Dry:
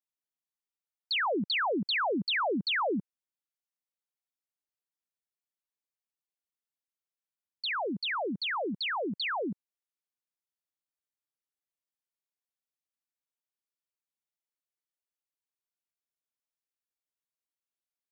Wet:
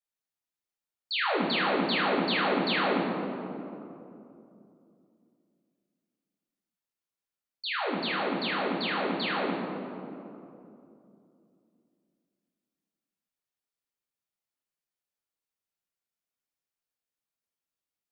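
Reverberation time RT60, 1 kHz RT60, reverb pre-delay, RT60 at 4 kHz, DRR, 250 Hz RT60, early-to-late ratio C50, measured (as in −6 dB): 2.8 s, 2.6 s, 5 ms, 1.4 s, −5.5 dB, 3.5 s, 0.5 dB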